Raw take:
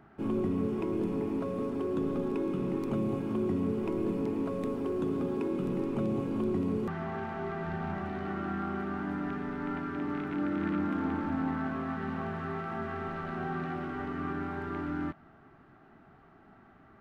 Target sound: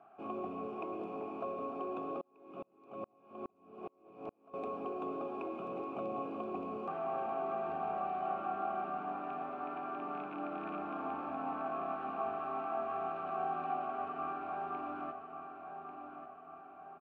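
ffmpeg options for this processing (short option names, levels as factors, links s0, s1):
-filter_complex "[0:a]asplit=3[s0][s1][s2];[s0]bandpass=f=730:t=q:w=8,volume=1[s3];[s1]bandpass=f=1090:t=q:w=8,volume=0.501[s4];[s2]bandpass=f=2440:t=q:w=8,volume=0.355[s5];[s3][s4][s5]amix=inputs=3:normalize=0,asplit=2[s6][s7];[s7]adelay=1143,lowpass=f=4100:p=1,volume=0.376,asplit=2[s8][s9];[s9]adelay=1143,lowpass=f=4100:p=1,volume=0.52,asplit=2[s10][s11];[s11]adelay=1143,lowpass=f=4100:p=1,volume=0.52,asplit=2[s12][s13];[s13]adelay=1143,lowpass=f=4100:p=1,volume=0.52,asplit=2[s14][s15];[s15]adelay=1143,lowpass=f=4100:p=1,volume=0.52,asplit=2[s16][s17];[s17]adelay=1143,lowpass=f=4100:p=1,volume=0.52[s18];[s6][s8][s10][s12][s14][s16][s18]amix=inputs=7:normalize=0,asettb=1/sr,asplit=3[s19][s20][s21];[s19]atrim=end=2.214[s22];[s20]atrim=start=2.21:end=4.54,asetpts=PTS-STARTPTS,afade=t=in:d=0.004:c=qsin,afade=t=out:st=2.326:d=0.004:c=qsin,aeval=exprs='val(0)*pow(10,-38*if(lt(mod(-2.4*n/s,1),2*abs(-2.4)/1000),1-mod(-2.4*n/s,1)/(2*abs(-2.4)/1000),(mod(-2.4*n/s,1)-2*abs(-2.4)/1000)/(1-2*abs(-2.4)/1000))/20)':c=same[s23];[s21]atrim=start=4.536[s24];[s22][s23]acrossfade=d=0.004:c1=hsin:c2=qsin[s25];[s25][s24]acrossfade=d=0.004:c1=qsin:c2=hsin,volume=2.66"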